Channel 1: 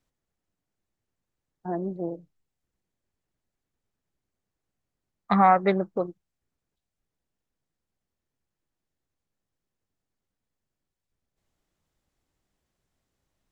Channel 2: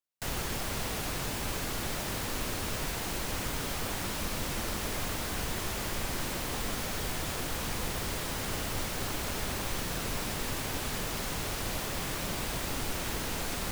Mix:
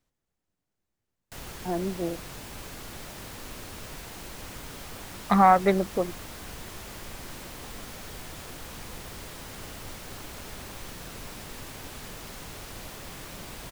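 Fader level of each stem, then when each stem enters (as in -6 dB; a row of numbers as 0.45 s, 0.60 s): +0.5 dB, -7.0 dB; 0.00 s, 1.10 s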